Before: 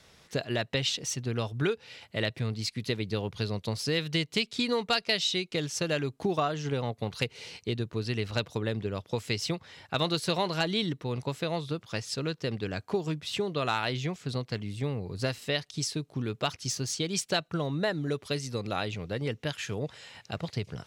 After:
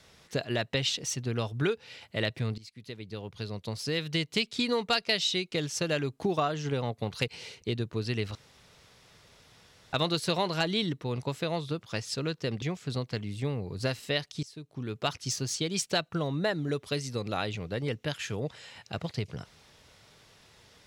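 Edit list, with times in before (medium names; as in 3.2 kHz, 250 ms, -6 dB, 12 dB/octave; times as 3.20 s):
2.58–4.40 s: fade in, from -19 dB
7.28–7.62 s: reverse
8.35–9.93 s: room tone
12.62–14.01 s: delete
15.82–16.48 s: fade in, from -23 dB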